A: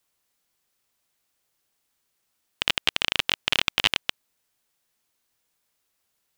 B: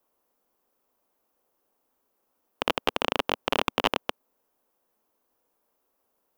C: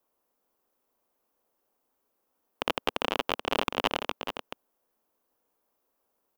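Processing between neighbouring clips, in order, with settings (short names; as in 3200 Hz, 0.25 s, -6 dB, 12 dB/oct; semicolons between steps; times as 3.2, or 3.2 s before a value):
graphic EQ 125/250/500/1000/2000/4000/8000 Hz -10/+7/+8/+6/-7/-9/-9 dB; gain +1.5 dB
echo 0.431 s -8 dB; gain -3 dB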